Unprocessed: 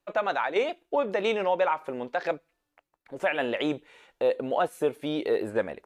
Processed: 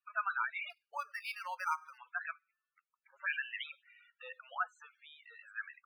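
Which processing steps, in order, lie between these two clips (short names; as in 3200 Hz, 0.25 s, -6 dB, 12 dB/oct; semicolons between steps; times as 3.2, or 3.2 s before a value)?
elliptic band-pass 1200–7500 Hz, stop band 80 dB; 4.71–5.39 compressor 6:1, threshold -48 dBFS, peak gain reduction 10.5 dB; loudest bins only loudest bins 16; tilt -2.5 dB/oct; 0.7–1.98 decimation joined by straight lines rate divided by 6×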